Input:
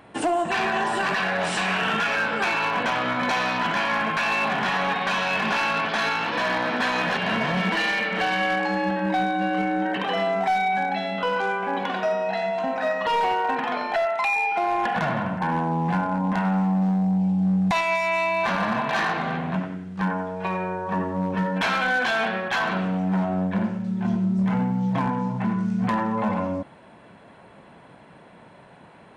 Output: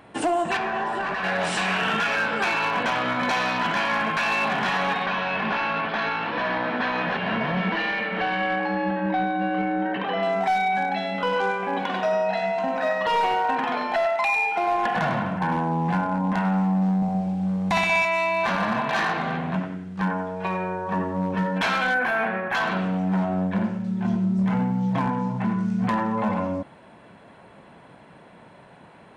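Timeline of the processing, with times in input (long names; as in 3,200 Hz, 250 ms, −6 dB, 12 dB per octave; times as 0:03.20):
0:00.57–0:01.24: mid-hump overdrive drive 7 dB, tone 1,000 Hz, clips at −16.5 dBFS
0:05.06–0:10.23: high-frequency loss of the air 240 metres
0:11.04–0:15.57: single-tap delay 101 ms −8.5 dB
0:16.96–0:18.05: flutter between parallel walls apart 10.6 metres, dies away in 1.2 s
0:21.94–0:22.55: flat-topped bell 5,000 Hz −15 dB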